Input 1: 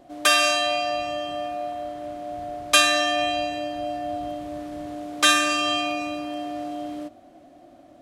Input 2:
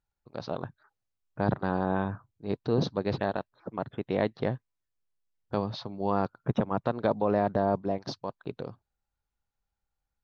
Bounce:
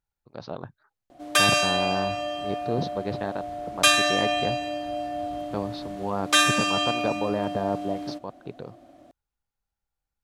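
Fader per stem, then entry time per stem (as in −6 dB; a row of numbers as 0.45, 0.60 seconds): −1.5, −1.5 decibels; 1.10, 0.00 seconds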